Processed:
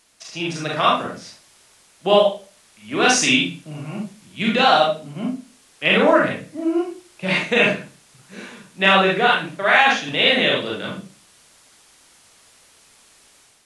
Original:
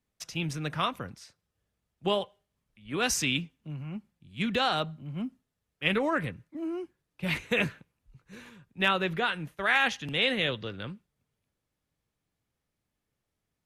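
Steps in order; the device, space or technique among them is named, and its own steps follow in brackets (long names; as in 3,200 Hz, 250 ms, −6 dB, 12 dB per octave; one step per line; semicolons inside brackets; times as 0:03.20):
filmed off a television (band-pass filter 200–7,700 Hz; parametric band 640 Hz +10 dB 0.21 octaves; convolution reverb RT60 0.35 s, pre-delay 31 ms, DRR −3.5 dB; white noise bed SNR 30 dB; automatic gain control gain up to 7 dB; level +1 dB; AAC 96 kbit/s 24,000 Hz)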